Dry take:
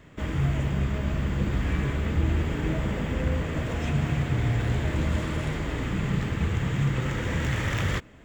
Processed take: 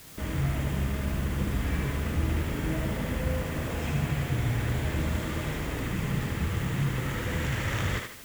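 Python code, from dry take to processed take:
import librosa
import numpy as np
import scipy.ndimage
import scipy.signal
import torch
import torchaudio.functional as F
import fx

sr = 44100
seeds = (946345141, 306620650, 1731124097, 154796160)

p1 = fx.quant_dither(x, sr, seeds[0], bits=6, dither='triangular')
p2 = x + (p1 * 10.0 ** (-8.0 / 20.0))
p3 = fx.echo_thinned(p2, sr, ms=76, feedback_pct=41, hz=420.0, wet_db=-3.5)
y = p3 * 10.0 ** (-6.0 / 20.0)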